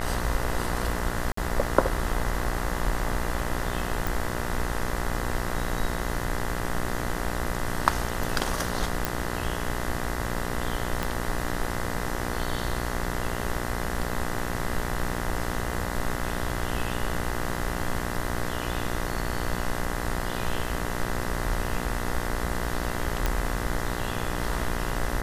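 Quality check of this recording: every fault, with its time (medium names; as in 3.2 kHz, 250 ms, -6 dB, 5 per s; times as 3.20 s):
buzz 60 Hz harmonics 34 -32 dBFS
1.32–1.37 s: dropout 54 ms
4.07 s: pop
9.05 s: pop
11.03 s: pop
23.26 s: pop -10 dBFS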